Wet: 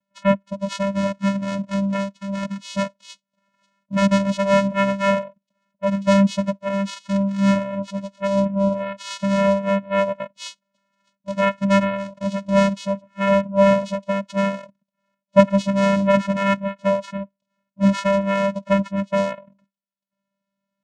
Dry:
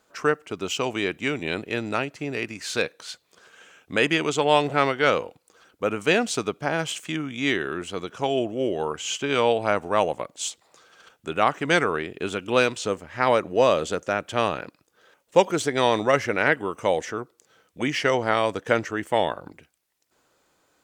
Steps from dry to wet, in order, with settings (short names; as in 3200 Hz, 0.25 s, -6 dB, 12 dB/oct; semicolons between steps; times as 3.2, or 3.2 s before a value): octaver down 2 oct, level -2 dB; spectral noise reduction 19 dB; vocoder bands 4, square 197 Hz; gain +5.5 dB